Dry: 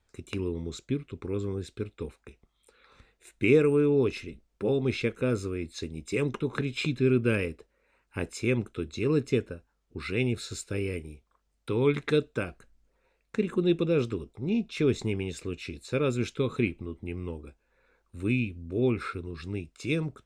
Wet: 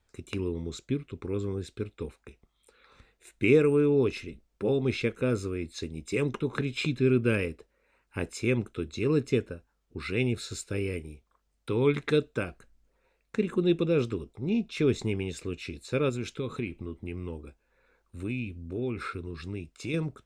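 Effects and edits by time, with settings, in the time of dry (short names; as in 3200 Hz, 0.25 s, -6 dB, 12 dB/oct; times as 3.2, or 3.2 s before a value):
16.09–19.94 compressor 2.5:1, threshold -30 dBFS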